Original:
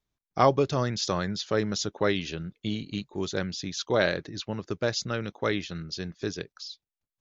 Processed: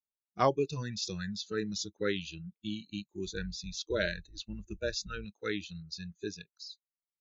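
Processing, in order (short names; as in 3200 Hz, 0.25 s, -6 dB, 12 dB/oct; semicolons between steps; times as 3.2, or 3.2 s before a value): 3.25–5.25 octaver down 2 oct, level -5 dB; spectral noise reduction 23 dB; gain -5.5 dB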